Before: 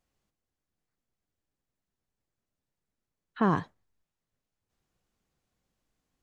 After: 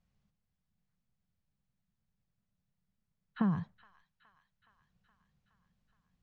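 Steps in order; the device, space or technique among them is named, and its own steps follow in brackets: jukebox (low-pass 5.4 kHz; resonant low shelf 240 Hz +7.5 dB, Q 3; compression 6:1, threshold -25 dBFS, peak gain reduction 13.5 dB); feedback echo behind a high-pass 419 ms, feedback 67%, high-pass 1.7 kHz, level -14 dB; trim -3 dB

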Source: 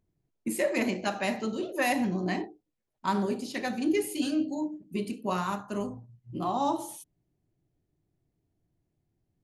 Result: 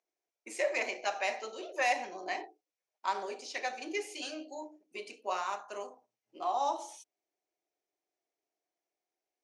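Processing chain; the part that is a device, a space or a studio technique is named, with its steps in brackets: phone speaker on a table (cabinet simulation 450–7900 Hz, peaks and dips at 730 Hz +4 dB, 2.3 kHz +6 dB, 5.8 kHz +8 dB); trim -4 dB

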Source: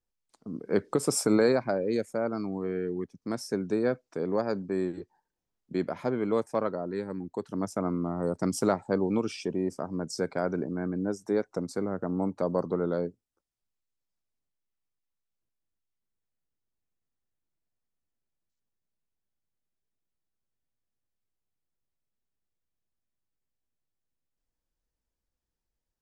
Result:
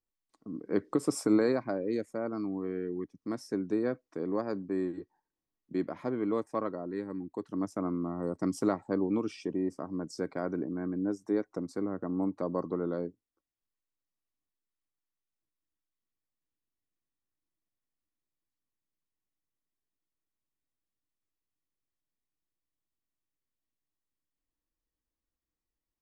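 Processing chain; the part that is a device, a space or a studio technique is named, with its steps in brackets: inside a helmet (treble shelf 5.1 kHz -5 dB; small resonant body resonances 300/1100/1900 Hz, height 9 dB); trim -6 dB

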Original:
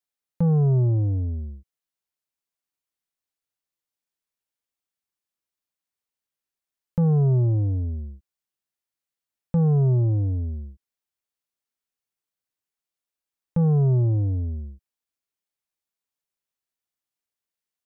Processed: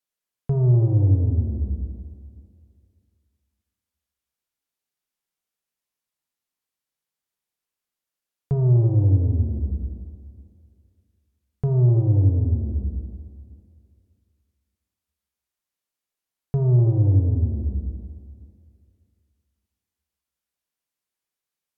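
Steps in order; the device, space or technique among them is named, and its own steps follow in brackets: slowed and reverbed (tape speed -18%; reverberation RT60 2.4 s, pre-delay 15 ms, DRR 3.5 dB)

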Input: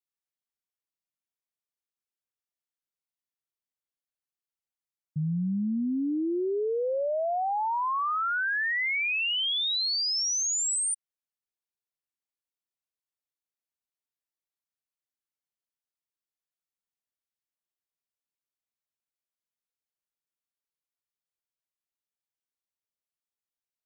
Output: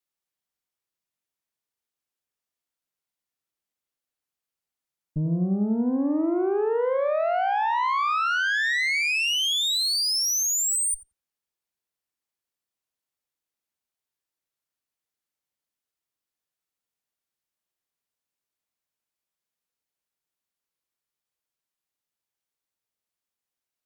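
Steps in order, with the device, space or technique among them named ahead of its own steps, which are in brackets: 9.02–9.82 s: steep high-pass 330 Hz; rockabilly slapback (valve stage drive 29 dB, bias 0.65; tape echo 89 ms, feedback 23%, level -4 dB, low-pass 1.3 kHz); trim +8 dB

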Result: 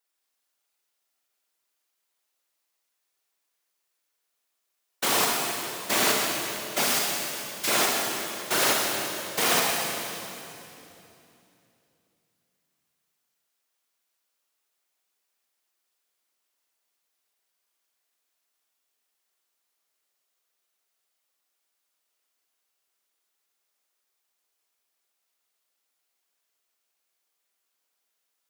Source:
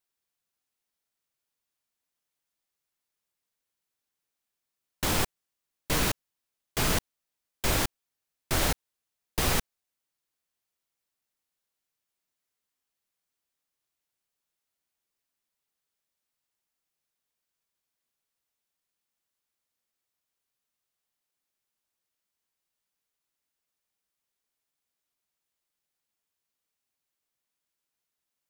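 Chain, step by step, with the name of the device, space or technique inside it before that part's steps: 6.84–7.68 s: amplifier tone stack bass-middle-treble 10-0-10; whispering ghost (whisper effect; high-pass 360 Hz 12 dB/octave; reverberation RT60 2.9 s, pre-delay 32 ms, DRR -1.5 dB); trim +3.5 dB

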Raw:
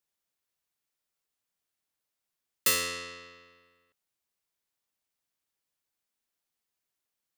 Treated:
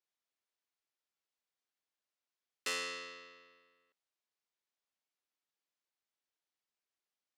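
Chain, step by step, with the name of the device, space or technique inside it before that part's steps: public-address speaker with an overloaded transformer (transformer saturation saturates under 3.5 kHz; band-pass 260–6000 Hz); trim -5 dB

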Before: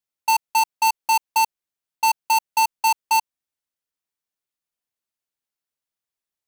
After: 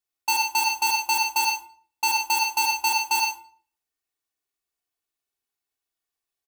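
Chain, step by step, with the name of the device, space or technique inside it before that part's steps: microphone above a desk (comb 2.7 ms, depth 64%; reverberation RT60 0.45 s, pre-delay 42 ms, DRR 0.5 dB); trim -2 dB

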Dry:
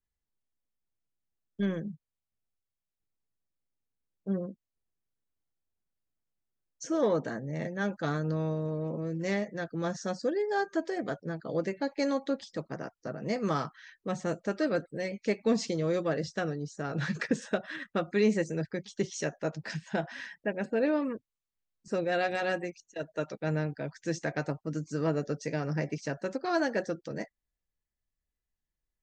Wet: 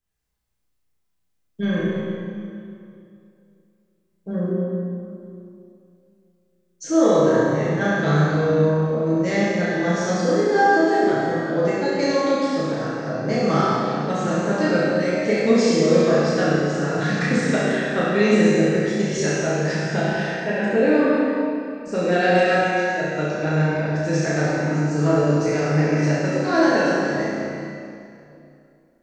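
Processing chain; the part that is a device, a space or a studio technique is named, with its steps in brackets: tunnel (flutter echo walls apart 5.8 m, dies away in 0.62 s; reverberation RT60 2.6 s, pre-delay 8 ms, DRR -6 dB); trim +3.5 dB

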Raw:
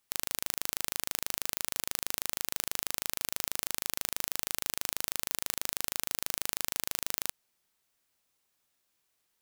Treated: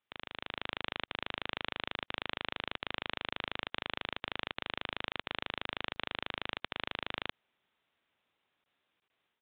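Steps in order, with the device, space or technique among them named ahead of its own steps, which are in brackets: call with lost packets (high-pass 110 Hz 6 dB/octave; resampled via 8 kHz; level rider gain up to 8 dB; lost packets); trim -4.5 dB

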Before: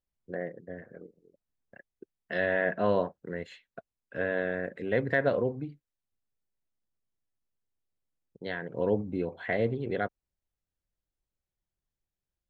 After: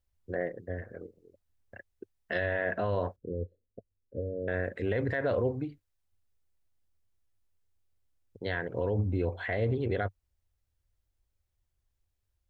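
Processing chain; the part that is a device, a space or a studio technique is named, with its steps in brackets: car stereo with a boomy subwoofer (resonant low shelf 120 Hz +7 dB, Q 3; peak limiter -24.5 dBFS, peak gain reduction 11 dB); 3.16–4.48 s: elliptic low-pass 520 Hz, stop band 50 dB; trim +4 dB

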